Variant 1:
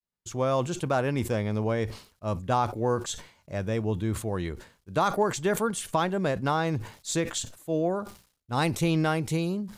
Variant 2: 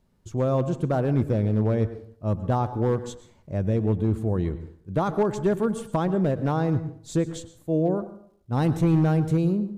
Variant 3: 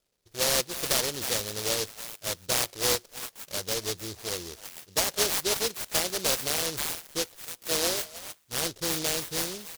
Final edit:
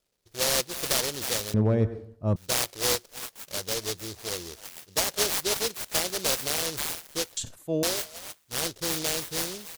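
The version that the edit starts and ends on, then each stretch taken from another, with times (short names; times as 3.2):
3
1.54–2.36 from 2
7.37–7.83 from 1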